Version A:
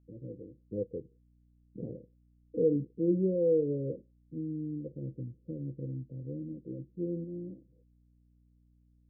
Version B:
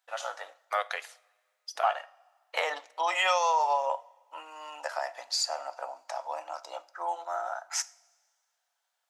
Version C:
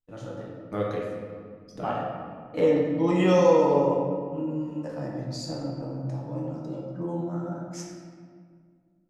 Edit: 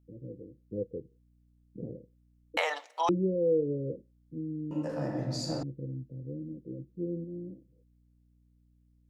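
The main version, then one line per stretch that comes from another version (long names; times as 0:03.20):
A
0:02.57–0:03.09: punch in from B
0:04.71–0:05.63: punch in from C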